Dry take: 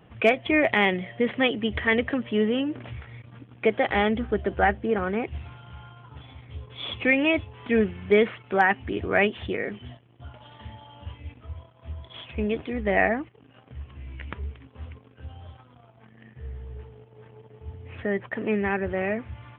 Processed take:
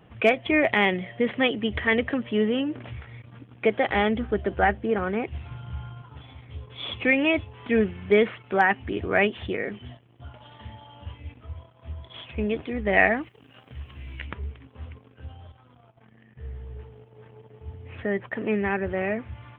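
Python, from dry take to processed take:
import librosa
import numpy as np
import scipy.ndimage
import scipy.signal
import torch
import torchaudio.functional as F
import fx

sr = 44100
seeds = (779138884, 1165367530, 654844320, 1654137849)

y = fx.low_shelf(x, sr, hz=200.0, db=11.5, at=(5.51, 6.02))
y = fx.high_shelf(y, sr, hz=2500.0, db=12.0, at=(12.93, 14.27))
y = fx.level_steps(y, sr, step_db=11, at=(15.32, 16.4))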